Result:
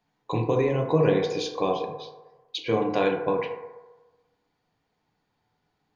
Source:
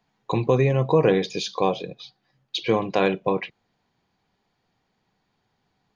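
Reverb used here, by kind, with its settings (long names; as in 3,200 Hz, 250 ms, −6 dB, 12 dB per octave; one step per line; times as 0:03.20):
feedback delay network reverb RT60 1.2 s, low-frequency decay 0.7×, high-frequency decay 0.3×, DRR 1.5 dB
level −5 dB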